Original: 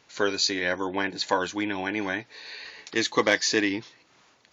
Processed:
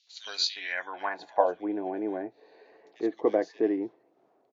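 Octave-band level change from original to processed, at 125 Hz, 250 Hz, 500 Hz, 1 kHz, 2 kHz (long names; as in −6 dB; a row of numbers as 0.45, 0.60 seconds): below −10 dB, −2.5 dB, −0.5 dB, −2.0 dB, −10.5 dB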